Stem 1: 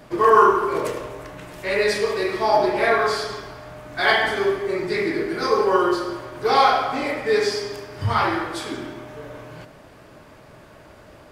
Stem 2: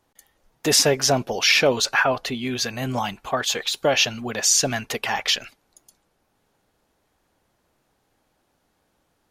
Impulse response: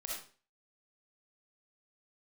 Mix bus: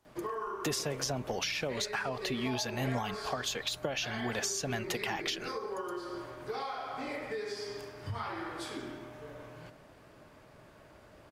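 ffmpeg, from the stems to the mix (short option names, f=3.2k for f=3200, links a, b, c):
-filter_complex "[0:a]acompressor=threshold=-24dB:ratio=12,adelay=50,volume=-10dB[a];[1:a]acompressor=threshold=-20dB:ratio=6,volume=-4.5dB[b];[a][b]amix=inputs=2:normalize=0,acrossover=split=180[c][d];[d]acompressor=threshold=-31dB:ratio=10[e];[c][e]amix=inputs=2:normalize=0"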